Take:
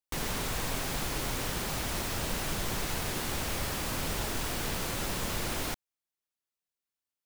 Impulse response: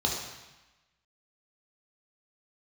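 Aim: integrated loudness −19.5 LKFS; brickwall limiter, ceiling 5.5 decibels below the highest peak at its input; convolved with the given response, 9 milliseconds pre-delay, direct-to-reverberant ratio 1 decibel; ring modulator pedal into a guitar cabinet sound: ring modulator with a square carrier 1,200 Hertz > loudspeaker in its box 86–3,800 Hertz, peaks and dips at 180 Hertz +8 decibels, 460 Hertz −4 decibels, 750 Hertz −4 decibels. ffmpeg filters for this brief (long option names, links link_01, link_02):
-filter_complex "[0:a]alimiter=level_in=1.5dB:limit=-24dB:level=0:latency=1,volume=-1.5dB,asplit=2[link_01][link_02];[1:a]atrim=start_sample=2205,adelay=9[link_03];[link_02][link_03]afir=irnorm=-1:irlink=0,volume=-10.5dB[link_04];[link_01][link_04]amix=inputs=2:normalize=0,aeval=exprs='val(0)*sgn(sin(2*PI*1200*n/s))':channel_layout=same,highpass=86,equalizer=frequency=180:width_type=q:width=4:gain=8,equalizer=frequency=460:width_type=q:width=4:gain=-4,equalizer=frequency=750:width_type=q:width=4:gain=-4,lowpass=frequency=3800:width=0.5412,lowpass=frequency=3800:width=1.3066,volume=13.5dB"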